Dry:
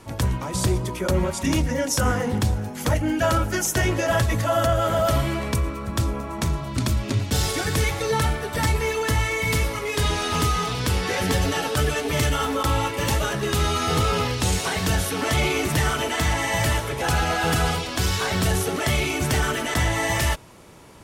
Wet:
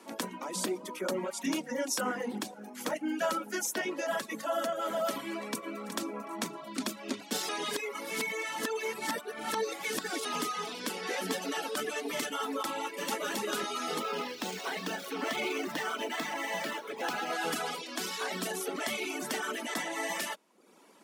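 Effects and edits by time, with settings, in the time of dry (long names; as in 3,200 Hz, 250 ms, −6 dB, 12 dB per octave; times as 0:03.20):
0:05.25–0:05.74: delay throw 370 ms, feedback 20%, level −8.5 dB
0:07.49–0:10.25: reverse
0:12.84–0:13.37: delay throw 270 ms, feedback 15%, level −1 dB
0:14.00–0:17.33: running median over 5 samples
whole clip: speech leveller 2 s; reverb reduction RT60 0.74 s; Butterworth high-pass 200 Hz 48 dB per octave; level −8 dB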